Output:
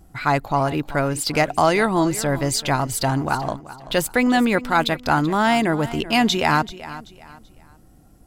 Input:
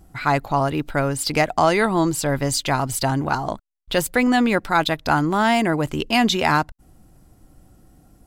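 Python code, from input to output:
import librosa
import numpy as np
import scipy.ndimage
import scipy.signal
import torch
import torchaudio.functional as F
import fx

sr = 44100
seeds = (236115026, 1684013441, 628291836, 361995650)

y = fx.echo_feedback(x, sr, ms=384, feedback_pct=32, wet_db=-16.0)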